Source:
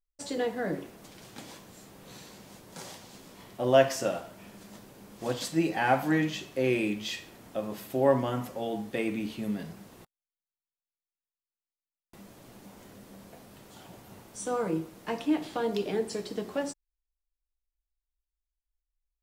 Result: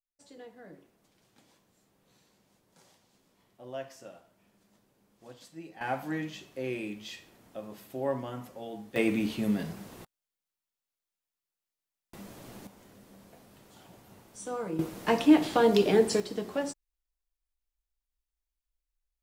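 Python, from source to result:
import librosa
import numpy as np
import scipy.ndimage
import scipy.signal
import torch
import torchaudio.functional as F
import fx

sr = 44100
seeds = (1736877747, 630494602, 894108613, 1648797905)

y = fx.gain(x, sr, db=fx.steps((0.0, -18.5), (5.81, -8.0), (8.96, 4.0), (12.67, -5.0), (14.79, 7.5), (16.2, 0.0)))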